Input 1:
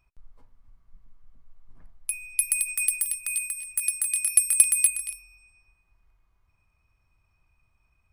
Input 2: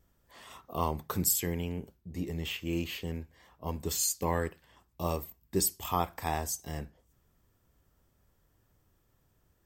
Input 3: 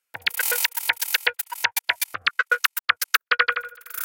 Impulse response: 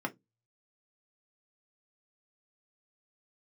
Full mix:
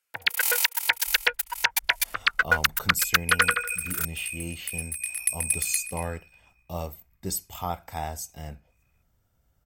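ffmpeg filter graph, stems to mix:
-filter_complex "[0:a]equalizer=frequency=2000:width=1.9:gain=12.5,aeval=exprs='val(0)*sin(2*PI*30*n/s)':channel_layout=same,aphaser=in_gain=1:out_gain=1:delay=4.6:decay=0.31:speed=1.1:type=sinusoidal,adelay=900,volume=-5dB[link_01];[1:a]aecho=1:1:1.4:0.46,adelay=1700,volume=-2dB[link_02];[2:a]asoftclip=type=hard:threshold=-10.5dB,volume=-0.5dB[link_03];[link_01][link_02][link_03]amix=inputs=3:normalize=0"

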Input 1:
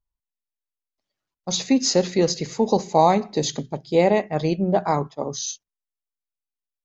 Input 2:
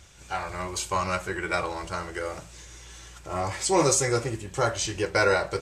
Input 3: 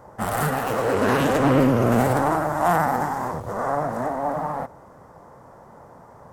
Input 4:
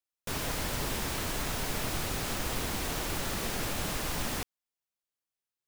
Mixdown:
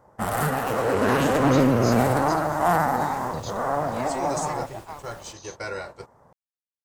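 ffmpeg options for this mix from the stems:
ffmpeg -i stem1.wav -i stem2.wav -i stem3.wav -i stem4.wav -filter_complex "[0:a]highpass=840,volume=-13.5dB[link_01];[1:a]adelay=450,volume=-11dB[link_02];[2:a]volume=-1dB[link_03];[3:a]adelay=900,volume=-17dB[link_04];[link_01][link_02][link_03][link_04]amix=inputs=4:normalize=0,agate=range=-9dB:threshold=-39dB:ratio=16:detection=peak" out.wav

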